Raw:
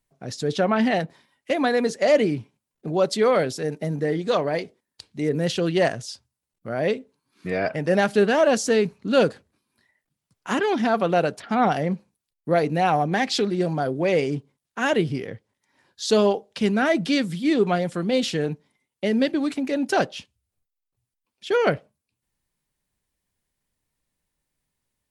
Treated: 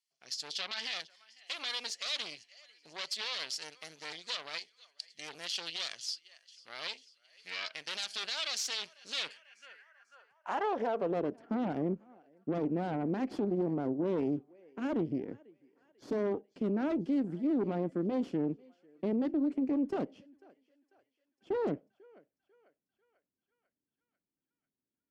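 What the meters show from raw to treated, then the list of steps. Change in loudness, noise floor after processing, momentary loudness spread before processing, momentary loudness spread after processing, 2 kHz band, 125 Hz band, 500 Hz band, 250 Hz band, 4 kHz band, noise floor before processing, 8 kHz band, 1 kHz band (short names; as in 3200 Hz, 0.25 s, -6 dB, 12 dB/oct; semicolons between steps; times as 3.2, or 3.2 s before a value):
-12.0 dB, under -85 dBFS, 13 LU, 14 LU, -14.5 dB, -14.0 dB, -15.5 dB, -9.5 dB, -5.0 dB, -84 dBFS, -8.0 dB, -15.5 dB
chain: notch 3800 Hz, Q 5.4; thinning echo 0.494 s, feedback 65%, high-pass 830 Hz, level -21.5 dB; added harmonics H 5 -16 dB, 8 -10 dB, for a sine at -6 dBFS; band-pass sweep 4100 Hz -> 290 Hz, 9.05–11.41; high shelf 2600 Hz +7.5 dB; limiter -17 dBFS, peak gain reduction 8.5 dB; gain -7.5 dB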